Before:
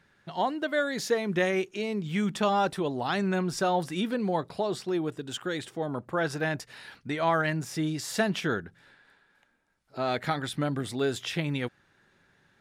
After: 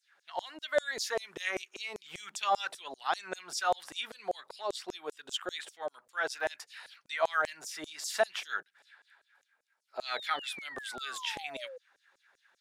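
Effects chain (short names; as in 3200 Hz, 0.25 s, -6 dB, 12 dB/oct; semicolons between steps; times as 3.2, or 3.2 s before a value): LFO high-pass saw down 5.1 Hz 490–7700 Hz; painted sound fall, 10.06–11.78, 490–4500 Hz -41 dBFS; gain -4 dB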